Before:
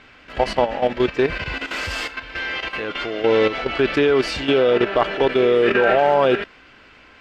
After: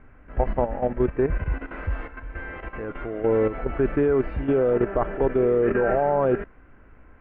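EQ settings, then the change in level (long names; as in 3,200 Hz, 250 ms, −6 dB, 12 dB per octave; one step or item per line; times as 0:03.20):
low-pass filter 1,900 Hz 24 dB per octave
spectral tilt −2.5 dB per octave
low-shelf EQ 67 Hz +9 dB
−7.5 dB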